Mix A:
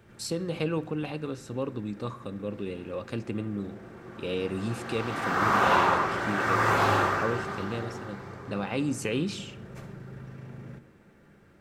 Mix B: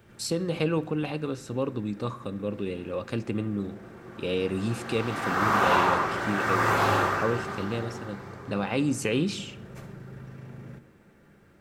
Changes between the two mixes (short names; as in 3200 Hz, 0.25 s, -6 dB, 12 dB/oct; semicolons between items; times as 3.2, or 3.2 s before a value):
speech +3.0 dB; background: add high shelf 11000 Hz +6 dB